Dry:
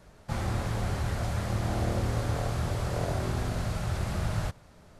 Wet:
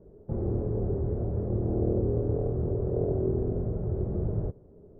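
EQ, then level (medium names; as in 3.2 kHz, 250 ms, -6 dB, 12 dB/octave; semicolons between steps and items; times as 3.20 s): resonant low-pass 410 Hz, resonance Q 4.9; distance through air 420 m; 0.0 dB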